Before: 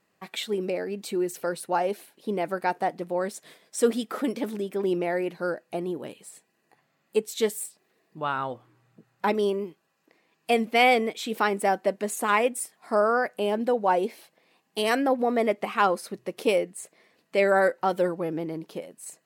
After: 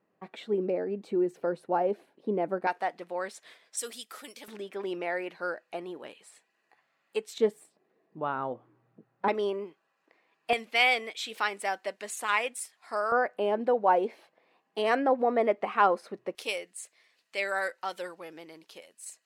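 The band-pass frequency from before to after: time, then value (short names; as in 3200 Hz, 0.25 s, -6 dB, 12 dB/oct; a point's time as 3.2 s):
band-pass, Q 0.54
380 Hz
from 2.67 s 2000 Hz
from 3.77 s 7600 Hz
from 4.48 s 1800 Hz
from 7.38 s 410 Hz
from 9.28 s 1200 Hz
from 10.53 s 3300 Hz
from 13.12 s 810 Hz
from 16.35 s 4500 Hz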